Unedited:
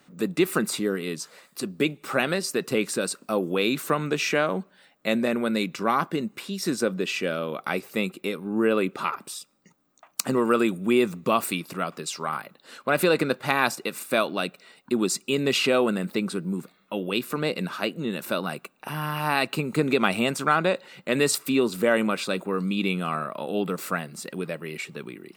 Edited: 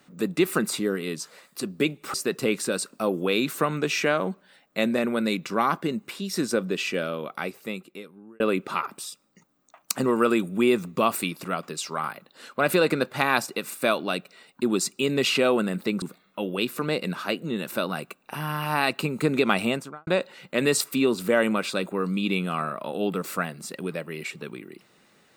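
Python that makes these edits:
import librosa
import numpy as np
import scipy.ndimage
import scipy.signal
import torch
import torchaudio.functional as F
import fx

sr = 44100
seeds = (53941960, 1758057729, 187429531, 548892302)

y = fx.studio_fade_out(x, sr, start_s=20.16, length_s=0.45)
y = fx.edit(y, sr, fx.cut(start_s=2.14, length_s=0.29),
    fx.fade_out_span(start_s=7.22, length_s=1.47),
    fx.cut(start_s=16.31, length_s=0.25), tone=tone)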